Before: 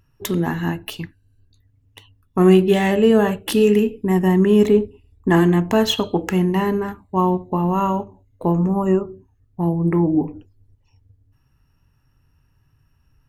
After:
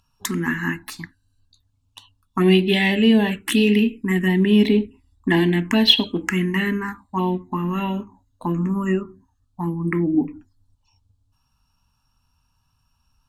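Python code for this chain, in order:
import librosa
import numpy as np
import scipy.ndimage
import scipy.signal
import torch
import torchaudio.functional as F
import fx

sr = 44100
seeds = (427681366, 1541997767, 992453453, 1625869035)

y = fx.graphic_eq(x, sr, hz=(125, 250, 500, 1000, 2000, 4000, 8000), db=(-7, 11, -6, 7, 10, 11, 9))
y = fx.env_phaser(y, sr, low_hz=330.0, high_hz=1300.0, full_db=-7.5)
y = y * librosa.db_to_amplitude(-5.0)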